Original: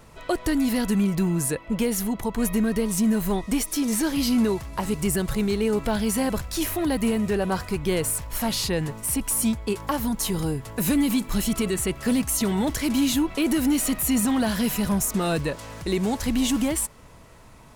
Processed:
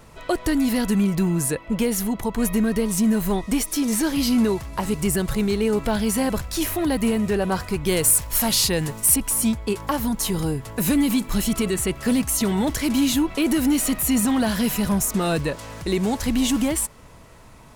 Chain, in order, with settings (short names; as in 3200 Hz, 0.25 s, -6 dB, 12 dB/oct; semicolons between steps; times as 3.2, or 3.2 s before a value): 7.86–9.16 high shelf 4200 Hz +9 dB; gain +2 dB